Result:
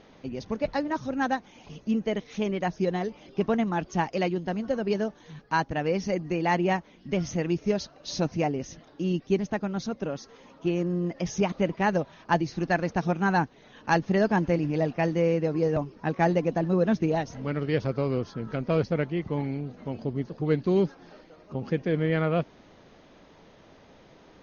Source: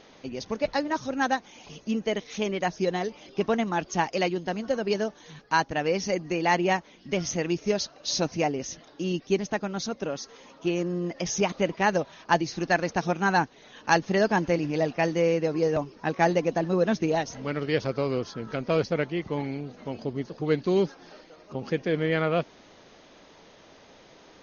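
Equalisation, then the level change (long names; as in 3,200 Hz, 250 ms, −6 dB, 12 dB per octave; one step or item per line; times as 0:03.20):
bass and treble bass +6 dB, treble 0 dB
high-shelf EQ 3,900 Hz −9.5 dB
−1.5 dB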